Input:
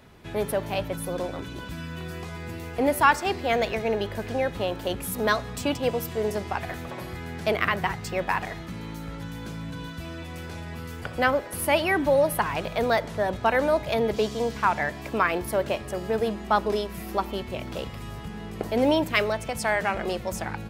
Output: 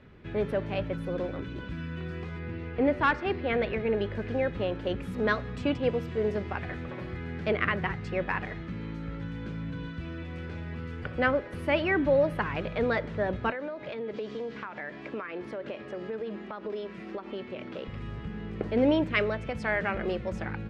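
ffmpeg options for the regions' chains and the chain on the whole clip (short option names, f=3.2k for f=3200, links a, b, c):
-filter_complex "[0:a]asettb=1/sr,asplit=3[a][b][c];[a]atrim=end=2.394[d];[b]atrim=start=2.39:end=3.94,asetpts=PTS-STARTPTS,afade=t=in:d=0.004:c=qsin,afade=t=out:st=1.546:d=0.004:c=qsin,lowpass=4.3k,asoftclip=type=hard:threshold=-12dB[e];[c]atrim=start=3.936[f];[d][e]acrossfade=d=0.004:c1=hsin:c2=qsin[g];[g][f]acrossfade=d=0.004:c1=qsin:c2=hsin,asettb=1/sr,asplit=3[h][i][j];[h]atrim=end=13.504[k];[i]atrim=start=13.5:end=17.88,asetpts=PTS-STARTPTS,afade=t=in:d=0.004:c=qsin,afade=t=out:st=4.376:d=0.004:c=qsin,highpass=230,lowpass=7.4k,acompressor=threshold=-29dB:ratio=8:attack=3.2:release=140:knee=1:detection=peak[l];[j]atrim=start=17.876[m];[k][l]acrossfade=d=0.004:c1=hsin:c2=qsin[n];[n][m]acrossfade=d=0.004:c1=qsin:c2=hsin,lowpass=2.3k,equalizer=f=890:t=o:w=0.81:g=-8.5,bandreject=f=680:w=12"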